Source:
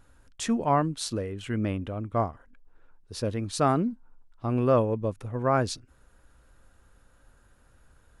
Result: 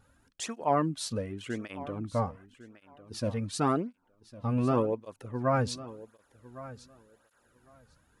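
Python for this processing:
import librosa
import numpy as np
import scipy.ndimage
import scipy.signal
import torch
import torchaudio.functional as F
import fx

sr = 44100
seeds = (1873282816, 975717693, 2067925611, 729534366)

p1 = x + fx.echo_feedback(x, sr, ms=1103, feedback_pct=16, wet_db=-17.0, dry=0)
y = fx.flanger_cancel(p1, sr, hz=0.89, depth_ms=3.1)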